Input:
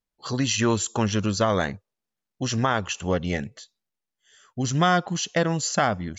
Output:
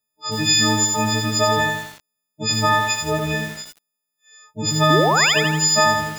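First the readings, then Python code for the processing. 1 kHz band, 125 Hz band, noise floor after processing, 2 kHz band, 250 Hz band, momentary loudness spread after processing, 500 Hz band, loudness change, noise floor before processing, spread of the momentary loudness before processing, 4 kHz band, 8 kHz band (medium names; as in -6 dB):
+6.5 dB, +3.0 dB, -80 dBFS, +9.5 dB, +1.5 dB, 12 LU, +4.0 dB, +7.0 dB, under -85 dBFS, 10 LU, +11.5 dB, no reading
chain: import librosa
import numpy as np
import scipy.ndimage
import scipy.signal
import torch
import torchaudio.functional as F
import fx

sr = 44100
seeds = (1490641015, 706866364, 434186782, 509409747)

y = fx.freq_snap(x, sr, grid_st=6)
y = scipy.signal.sosfilt(scipy.signal.butter(2, 74.0, 'highpass', fs=sr, output='sos'), y)
y = fx.high_shelf(y, sr, hz=2300.0, db=-3.0)
y = fx.spec_paint(y, sr, seeds[0], shape='rise', start_s=4.9, length_s=0.43, low_hz=270.0, high_hz=3700.0, level_db=-19.0)
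y = fx.echo_crushed(y, sr, ms=83, feedback_pct=55, bits=6, wet_db=-3.5)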